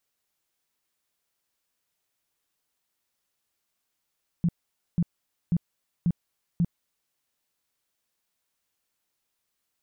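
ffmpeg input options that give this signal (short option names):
-f lavfi -i "aevalsrc='0.112*sin(2*PI*171*mod(t,0.54))*lt(mod(t,0.54),8/171)':d=2.7:s=44100"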